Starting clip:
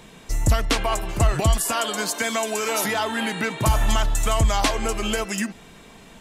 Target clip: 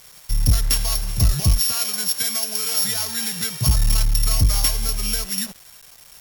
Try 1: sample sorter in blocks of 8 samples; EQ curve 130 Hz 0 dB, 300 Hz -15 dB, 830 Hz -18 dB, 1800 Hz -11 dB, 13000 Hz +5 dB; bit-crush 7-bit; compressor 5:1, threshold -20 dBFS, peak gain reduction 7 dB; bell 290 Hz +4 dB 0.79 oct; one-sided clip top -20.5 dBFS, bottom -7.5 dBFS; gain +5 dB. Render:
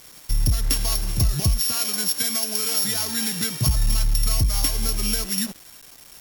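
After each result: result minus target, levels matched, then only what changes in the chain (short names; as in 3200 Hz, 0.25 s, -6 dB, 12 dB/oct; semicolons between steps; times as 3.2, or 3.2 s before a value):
compressor: peak gain reduction +7 dB; 250 Hz band +3.5 dB
remove: compressor 5:1, threshold -20 dBFS, peak gain reduction 7 dB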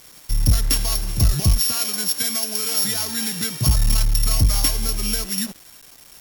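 250 Hz band +3.5 dB
change: bell 290 Hz -7 dB 0.79 oct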